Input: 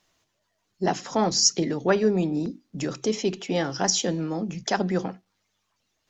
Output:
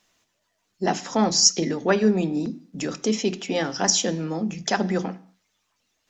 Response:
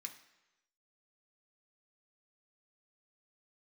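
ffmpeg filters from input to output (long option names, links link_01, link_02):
-filter_complex "[0:a]asplit=2[link_01][link_02];[link_02]equalizer=frequency=180:width=1.5:gain=6.5[link_03];[1:a]atrim=start_sample=2205,afade=type=out:start_time=0.29:duration=0.01,atrim=end_sample=13230[link_04];[link_03][link_04]afir=irnorm=-1:irlink=0,volume=-2dB[link_05];[link_01][link_05]amix=inputs=2:normalize=0"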